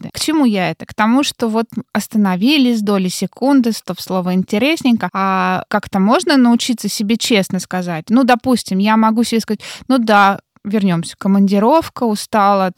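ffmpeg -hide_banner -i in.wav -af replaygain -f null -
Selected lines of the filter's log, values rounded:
track_gain = -5.1 dB
track_peak = 0.609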